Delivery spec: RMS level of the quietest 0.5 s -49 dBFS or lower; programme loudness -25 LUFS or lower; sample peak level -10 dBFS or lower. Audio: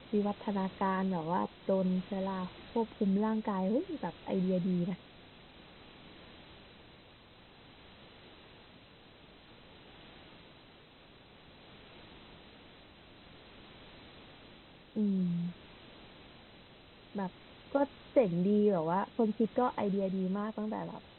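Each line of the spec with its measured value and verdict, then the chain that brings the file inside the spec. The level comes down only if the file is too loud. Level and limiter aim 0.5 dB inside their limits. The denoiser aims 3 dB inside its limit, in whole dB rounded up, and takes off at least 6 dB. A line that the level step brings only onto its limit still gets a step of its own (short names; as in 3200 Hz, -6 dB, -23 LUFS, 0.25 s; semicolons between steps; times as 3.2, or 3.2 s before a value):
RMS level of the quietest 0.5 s -58 dBFS: OK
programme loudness -33.5 LUFS: OK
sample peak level -15.5 dBFS: OK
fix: none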